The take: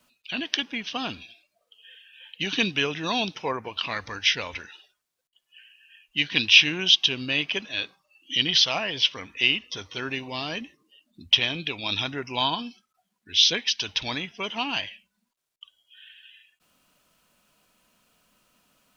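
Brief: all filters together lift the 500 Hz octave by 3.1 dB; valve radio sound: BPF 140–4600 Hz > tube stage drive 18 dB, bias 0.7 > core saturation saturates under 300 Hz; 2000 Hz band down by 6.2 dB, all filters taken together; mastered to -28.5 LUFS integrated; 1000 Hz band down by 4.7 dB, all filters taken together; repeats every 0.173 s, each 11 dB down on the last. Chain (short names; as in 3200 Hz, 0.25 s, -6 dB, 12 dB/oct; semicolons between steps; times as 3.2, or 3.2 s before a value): BPF 140–4600 Hz; bell 500 Hz +6 dB; bell 1000 Hz -6.5 dB; bell 2000 Hz -7.5 dB; feedback echo 0.173 s, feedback 28%, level -11 dB; tube stage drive 18 dB, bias 0.7; core saturation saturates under 300 Hz; gain +4.5 dB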